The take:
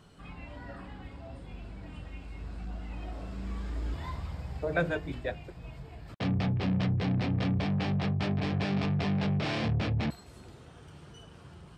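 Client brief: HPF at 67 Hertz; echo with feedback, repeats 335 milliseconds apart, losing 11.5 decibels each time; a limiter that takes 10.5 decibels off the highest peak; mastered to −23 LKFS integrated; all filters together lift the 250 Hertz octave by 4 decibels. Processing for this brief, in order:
high-pass filter 67 Hz
parametric band 250 Hz +6 dB
brickwall limiter −25 dBFS
repeating echo 335 ms, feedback 27%, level −11.5 dB
level +12 dB

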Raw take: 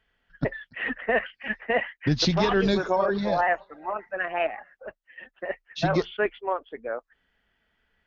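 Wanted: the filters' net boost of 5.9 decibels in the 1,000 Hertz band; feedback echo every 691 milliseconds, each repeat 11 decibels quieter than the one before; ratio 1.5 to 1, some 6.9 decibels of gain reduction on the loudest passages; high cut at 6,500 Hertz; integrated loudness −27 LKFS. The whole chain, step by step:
low-pass filter 6,500 Hz
parametric band 1,000 Hz +8 dB
downward compressor 1.5 to 1, threshold −35 dBFS
repeating echo 691 ms, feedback 28%, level −11 dB
level +3.5 dB

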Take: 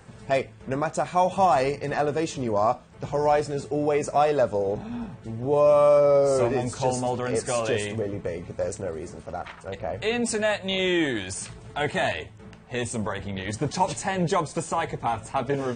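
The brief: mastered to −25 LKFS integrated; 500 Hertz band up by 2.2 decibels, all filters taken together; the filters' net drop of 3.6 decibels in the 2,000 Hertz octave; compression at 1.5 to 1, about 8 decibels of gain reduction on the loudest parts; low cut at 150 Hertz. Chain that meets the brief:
high-pass filter 150 Hz
parametric band 500 Hz +3 dB
parametric band 2,000 Hz −4.5 dB
downward compressor 1.5 to 1, threshold −36 dBFS
level +5.5 dB

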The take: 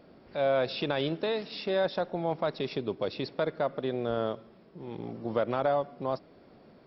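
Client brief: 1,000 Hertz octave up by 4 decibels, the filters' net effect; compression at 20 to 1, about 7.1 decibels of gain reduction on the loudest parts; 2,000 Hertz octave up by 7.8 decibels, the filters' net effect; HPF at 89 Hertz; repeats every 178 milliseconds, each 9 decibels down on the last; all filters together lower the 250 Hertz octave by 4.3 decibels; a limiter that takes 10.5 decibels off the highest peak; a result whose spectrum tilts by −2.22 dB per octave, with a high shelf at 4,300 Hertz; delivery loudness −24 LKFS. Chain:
high-pass filter 89 Hz
parametric band 250 Hz −6.5 dB
parametric band 1,000 Hz +4 dB
parametric band 2,000 Hz +8.5 dB
high-shelf EQ 4,300 Hz +4 dB
downward compressor 20 to 1, threshold −27 dBFS
brickwall limiter −24.5 dBFS
repeating echo 178 ms, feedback 35%, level −9 dB
level +12.5 dB

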